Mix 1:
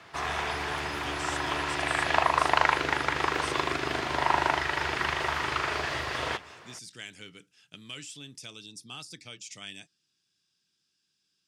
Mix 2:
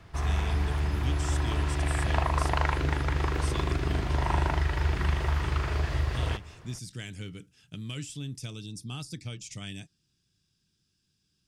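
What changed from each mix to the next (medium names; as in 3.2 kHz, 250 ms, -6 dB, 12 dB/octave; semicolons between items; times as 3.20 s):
background -6.5 dB; master: remove frequency weighting A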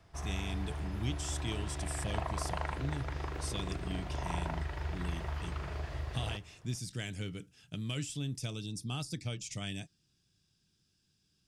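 background -11.0 dB; master: add peaking EQ 650 Hz +5 dB 0.71 oct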